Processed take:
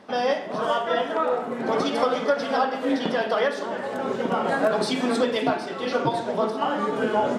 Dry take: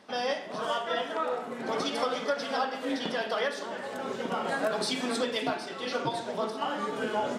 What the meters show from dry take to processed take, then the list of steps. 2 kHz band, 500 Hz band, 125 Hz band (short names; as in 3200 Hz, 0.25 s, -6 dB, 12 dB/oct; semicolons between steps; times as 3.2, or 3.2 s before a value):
+4.5 dB, +8.0 dB, +8.5 dB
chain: high shelf 2000 Hz -9 dB; gain +8.5 dB